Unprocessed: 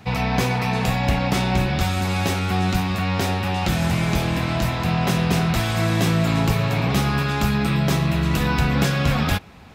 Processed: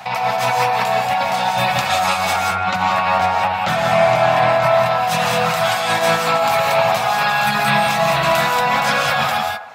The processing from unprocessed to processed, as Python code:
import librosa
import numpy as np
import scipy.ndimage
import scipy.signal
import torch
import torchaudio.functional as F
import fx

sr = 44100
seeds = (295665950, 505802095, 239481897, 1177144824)

y = fx.lowpass(x, sr, hz=2000.0, slope=6, at=(2.36, 4.86))
y = fx.dereverb_blind(y, sr, rt60_s=0.83)
y = scipy.signal.sosfilt(scipy.signal.butter(4, 110.0, 'highpass', fs=sr, output='sos'), y)
y = fx.low_shelf_res(y, sr, hz=510.0, db=-12.0, q=3.0)
y = fx.over_compress(y, sr, threshold_db=-29.0, ratio=-1.0)
y = fx.echo_wet_bandpass(y, sr, ms=71, feedback_pct=50, hz=740.0, wet_db=-5.5)
y = fx.rev_gated(y, sr, seeds[0], gate_ms=210, shape='rising', drr_db=1.0)
y = y * 10.0 ** (8.0 / 20.0)